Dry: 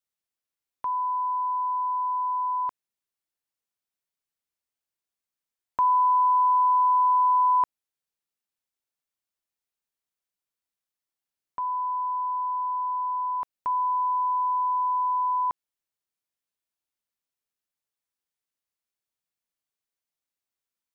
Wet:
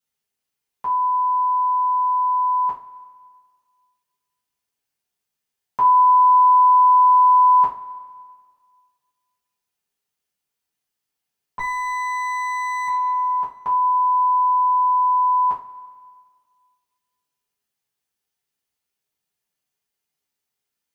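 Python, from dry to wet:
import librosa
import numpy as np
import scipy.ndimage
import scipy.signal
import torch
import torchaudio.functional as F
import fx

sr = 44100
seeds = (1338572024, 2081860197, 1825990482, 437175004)

y = fx.lower_of_two(x, sr, delay_ms=5.7, at=(11.59, 12.88))
y = fx.rev_double_slope(y, sr, seeds[0], early_s=0.29, late_s=1.8, knee_db=-19, drr_db=-6.5)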